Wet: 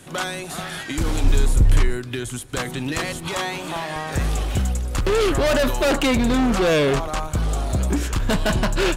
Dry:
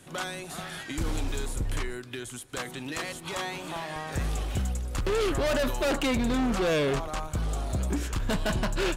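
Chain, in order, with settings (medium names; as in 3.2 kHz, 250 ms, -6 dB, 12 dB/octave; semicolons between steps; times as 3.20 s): 1.24–3.28 s: bass shelf 180 Hz +9.5 dB; trim +7.5 dB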